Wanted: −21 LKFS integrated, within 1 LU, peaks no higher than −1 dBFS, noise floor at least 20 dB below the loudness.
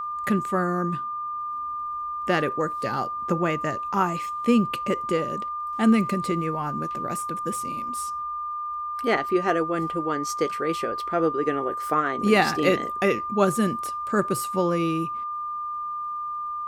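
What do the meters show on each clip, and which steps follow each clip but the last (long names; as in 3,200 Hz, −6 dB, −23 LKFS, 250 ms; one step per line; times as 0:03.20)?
crackle rate 17 per second; interfering tone 1,200 Hz; level of the tone −28 dBFS; integrated loudness −25.5 LKFS; sample peak −6.5 dBFS; target loudness −21.0 LKFS
→ click removal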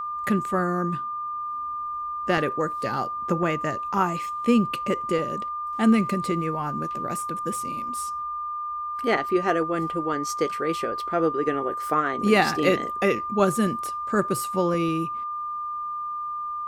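crackle rate 0.30 per second; interfering tone 1,200 Hz; level of the tone −28 dBFS
→ notch filter 1,200 Hz, Q 30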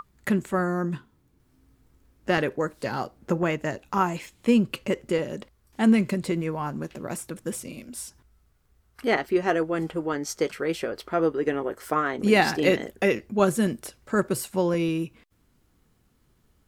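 interfering tone none found; integrated loudness −26.0 LKFS; sample peak −6.5 dBFS; target loudness −21.0 LKFS
→ level +5 dB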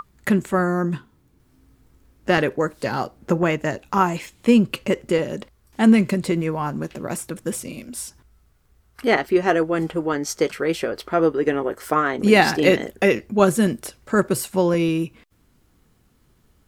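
integrated loudness −21.0 LKFS; sample peak −1.5 dBFS; background noise floor −60 dBFS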